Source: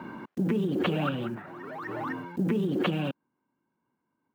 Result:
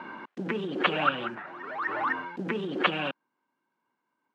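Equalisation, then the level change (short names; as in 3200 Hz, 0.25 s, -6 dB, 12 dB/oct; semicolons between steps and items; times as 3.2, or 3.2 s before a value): HPF 1000 Hz 6 dB/oct; LPF 3900 Hz 12 dB/oct; dynamic EQ 1400 Hz, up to +5 dB, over -46 dBFS, Q 0.77; +6.0 dB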